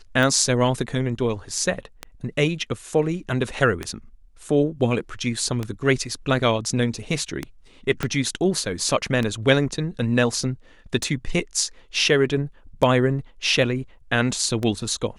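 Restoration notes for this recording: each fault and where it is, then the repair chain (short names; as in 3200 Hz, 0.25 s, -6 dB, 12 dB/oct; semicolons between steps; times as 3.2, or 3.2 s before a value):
tick 33 1/3 rpm
8.03 pop -10 dBFS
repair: de-click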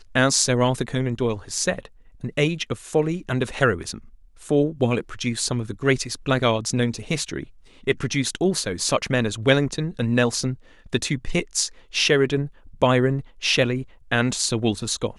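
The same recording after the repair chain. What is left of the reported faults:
8.03 pop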